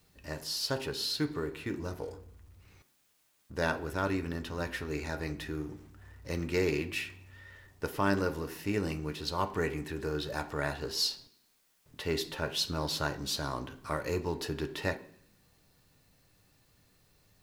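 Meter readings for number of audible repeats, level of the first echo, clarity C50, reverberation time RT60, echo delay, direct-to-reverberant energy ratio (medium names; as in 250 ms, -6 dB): no echo, no echo, 16.0 dB, 0.65 s, no echo, 7.5 dB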